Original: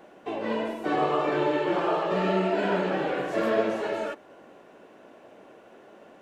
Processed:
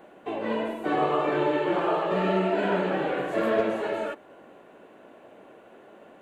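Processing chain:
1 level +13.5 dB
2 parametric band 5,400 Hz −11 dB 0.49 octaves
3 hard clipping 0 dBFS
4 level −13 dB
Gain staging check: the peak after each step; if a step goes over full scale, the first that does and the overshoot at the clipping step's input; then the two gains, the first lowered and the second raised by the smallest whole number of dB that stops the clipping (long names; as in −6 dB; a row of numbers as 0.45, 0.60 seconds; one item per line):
+3.0, +3.0, 0.0, −13.0 dBFS
step 1, 3.0 dB
step 1 +10.5 dB, step 4 −10 dB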